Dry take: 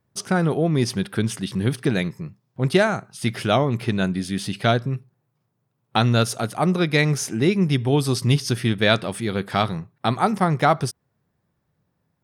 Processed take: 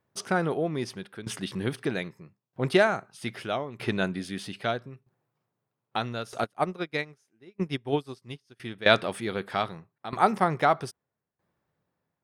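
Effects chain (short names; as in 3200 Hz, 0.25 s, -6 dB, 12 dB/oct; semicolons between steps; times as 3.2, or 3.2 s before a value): tone controls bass -9 dB, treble -6 dB; tremolo saw down 0.79 Hz, depth 85%; 6.44–8.6 upward expander 2.5:1, over -40 dBFS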